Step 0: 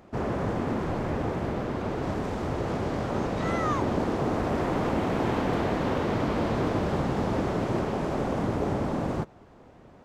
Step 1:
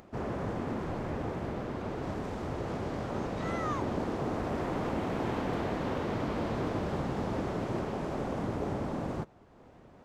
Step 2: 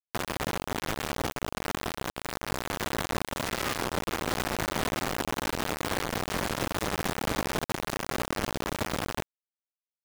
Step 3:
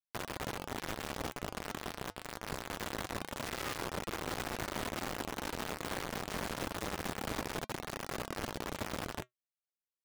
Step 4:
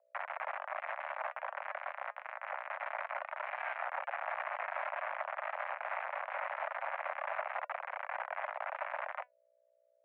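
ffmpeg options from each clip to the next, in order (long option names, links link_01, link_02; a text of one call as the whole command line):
ffmpeg -i in.wav -af "acompressor=mode=upward:threshold=-43dB:ratio=2.5,volume=-6dB" out.wav
ffmpeg -i in.wav -af "alimiter=level_in=2.5dB:limit=-24dB:level=0:latency=1:release=83,volume=-2.5dB,acrusher=bits=4:mix=0:aa=0.000001,volume=4.5dB" out.wav
ffmpeg -i in.wav -af "flanger=delay=1.7:depth=3.6:regen=-79:speed=0.25:shape=triangular,volume=-3.5dB" out.wav
ffmpeg -i in.wav -af "aeval=exprs='val(0)+0.000794*(sin(2*PI*60*n/s)+sin(2*PI*2*60*n/s)/2+sin(2*PI*3*60*n/s)/3+sin(2*PI*4*60*n/s)/4+sin(2*PI*5*60*n/s)/5)':channel_layout=same,highpass=frequency=220:width_type=q:width=0.5412,highpass=frequency=220:width_type=q:width=1.307,lowpass=frequency=2000:width_type=q:width=0.5176,lowpass=frequency=2000:width_type=q:width=0.7071,lowpass=frequency=2000:width_type=q:width=1.932,afreqshift=360,volume=2dB" out.wav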